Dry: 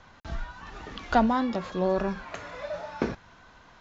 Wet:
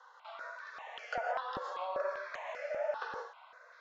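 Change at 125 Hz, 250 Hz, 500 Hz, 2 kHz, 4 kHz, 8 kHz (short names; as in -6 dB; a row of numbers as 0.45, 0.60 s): -26.0 dB, -31.0 dB, -7.5 dB, -4.0 dB, -8.0 dB, n/a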